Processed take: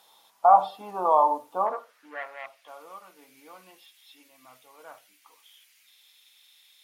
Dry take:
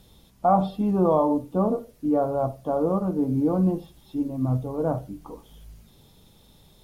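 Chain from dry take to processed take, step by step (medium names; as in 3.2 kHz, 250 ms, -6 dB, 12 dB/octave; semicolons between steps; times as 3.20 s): 1.66–2.68 s: overdrive pedal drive 12 dB, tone 1.7 kHz, clips at -12.5 dBFS; high-pass sweep 890 Hz -> 2.2 kHz, 1.62–2.34 s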